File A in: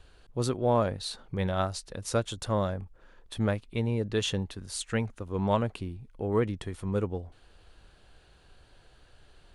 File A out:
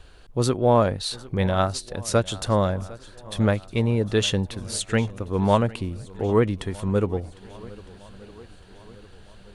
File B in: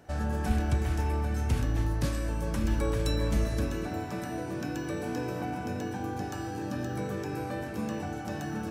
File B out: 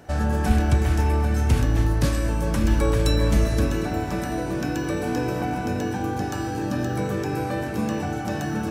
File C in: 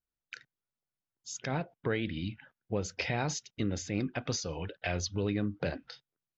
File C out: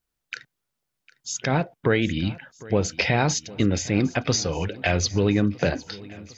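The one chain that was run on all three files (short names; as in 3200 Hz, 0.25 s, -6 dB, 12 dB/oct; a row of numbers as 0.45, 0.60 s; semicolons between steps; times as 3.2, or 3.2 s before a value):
swung echo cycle 1.258 s, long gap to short 1.5:1, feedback 45%, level -20.5 dB; match loudness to -24 LUFS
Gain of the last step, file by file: +7.0, +8.0, +11.0 dB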